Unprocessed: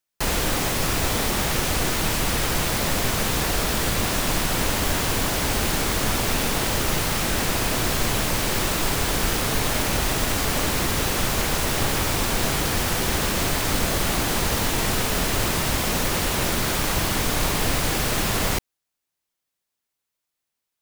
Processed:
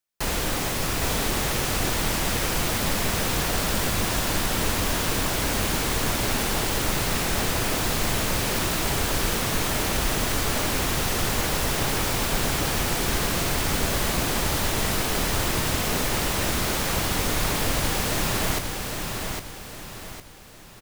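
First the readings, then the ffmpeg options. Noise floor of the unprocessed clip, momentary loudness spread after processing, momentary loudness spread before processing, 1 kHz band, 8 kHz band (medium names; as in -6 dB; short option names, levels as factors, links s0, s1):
-83 dBFS, 2 LU, 0 LU, -1.5 dB, -1.5 dB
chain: -af "aecho=1:1:807|1614|2421|3228|4035:0.562|0.219|0.0855|0.0334|0.013,volume=0.708"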